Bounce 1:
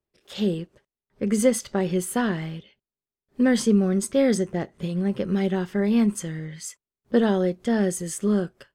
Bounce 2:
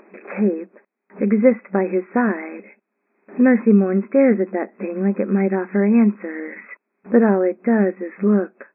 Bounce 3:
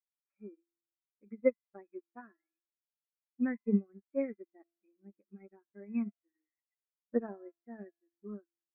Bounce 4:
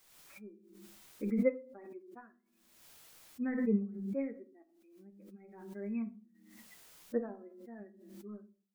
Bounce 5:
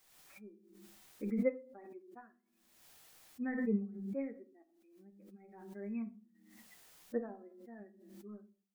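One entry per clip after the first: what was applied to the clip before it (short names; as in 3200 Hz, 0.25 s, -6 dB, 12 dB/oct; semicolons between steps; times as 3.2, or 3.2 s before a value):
FFT band-pass 190–2600 Hz; in parallel at +1.5 dB: upward compressor, threshold -21 dBFS; on the sum: gain -1 dB
per-bin expansion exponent 2; resonator 340 Hz, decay 0.86 s, mix 70%; upward expander 2.5:1, over -49 dBFS
shoebox room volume 210 m³, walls furnished, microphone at 0.58 m; backwards sustainer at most 46 dB/s; gain -3 dB
small resonant body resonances 760/1800 Hz, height 6 dB; gain -3 dB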